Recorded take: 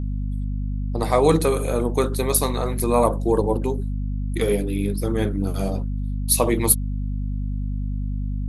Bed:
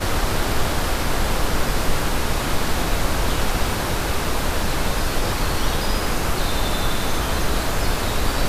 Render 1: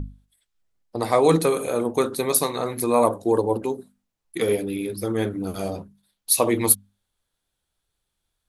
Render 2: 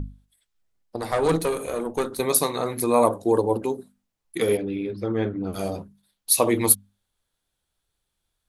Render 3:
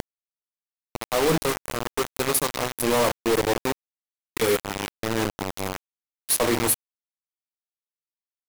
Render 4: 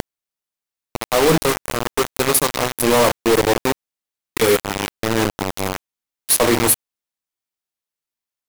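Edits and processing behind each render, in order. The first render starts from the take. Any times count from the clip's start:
mains-hum notches 50/100/150/200/250 Hz
0:00.96–0:02.20: tube saturation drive 13 dB, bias 0.7; 0:04.57–0:05.53: high-frequency loss of the air 250 metres
soft clipping −18 dBFS, distortion −10 dB; bit reduction 4 bits
level +6.5 dB

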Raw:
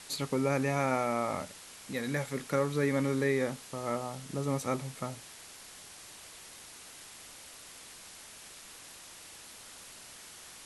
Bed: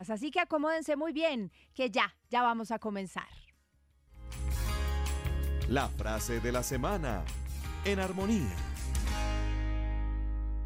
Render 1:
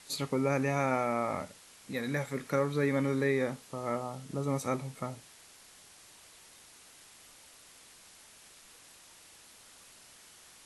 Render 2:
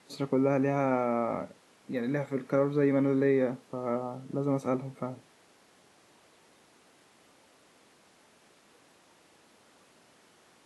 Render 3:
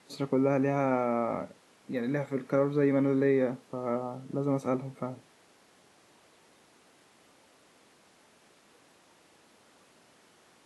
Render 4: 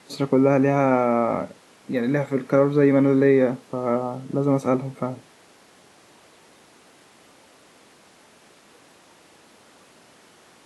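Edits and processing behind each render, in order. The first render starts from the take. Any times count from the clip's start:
noise reduction from a noise print 6 dB
high-pass filter 260 Hz 12 dB per octave; spectral tilt −4 dB per octave
no processing that can be heard
level +8.5 dB

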